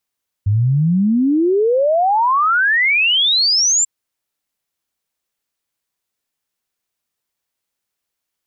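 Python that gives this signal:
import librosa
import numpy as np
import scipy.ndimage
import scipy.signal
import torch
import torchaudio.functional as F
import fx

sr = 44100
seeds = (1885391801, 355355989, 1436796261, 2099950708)

y = fx.ess(sr, length_s=3.39, from_hz=97.0, to_hz=7500.0, level_db=-11.5)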